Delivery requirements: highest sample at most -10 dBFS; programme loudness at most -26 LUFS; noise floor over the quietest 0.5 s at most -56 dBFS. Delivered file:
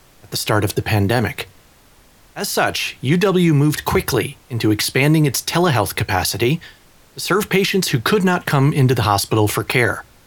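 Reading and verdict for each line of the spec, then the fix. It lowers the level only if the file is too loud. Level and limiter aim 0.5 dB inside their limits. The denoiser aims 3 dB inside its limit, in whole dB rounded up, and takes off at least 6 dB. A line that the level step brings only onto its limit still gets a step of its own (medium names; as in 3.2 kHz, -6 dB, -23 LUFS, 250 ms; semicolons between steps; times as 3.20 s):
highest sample -1.5 dBFS: fail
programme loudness -17.5 LUFS: fail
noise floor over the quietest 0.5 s -50 dBFS: fail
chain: trim -9 dB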